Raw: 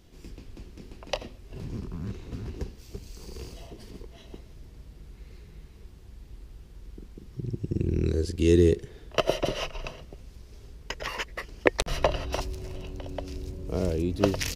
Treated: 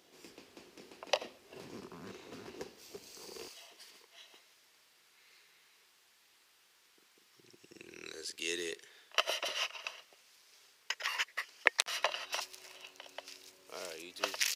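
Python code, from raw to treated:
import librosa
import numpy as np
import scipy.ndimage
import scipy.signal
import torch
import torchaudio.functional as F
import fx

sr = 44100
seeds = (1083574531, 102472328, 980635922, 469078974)

y = fx.highpass(x, sr, hz=fx.steps((0.0, 450.0), (3.48, 1300.0)), slope=12)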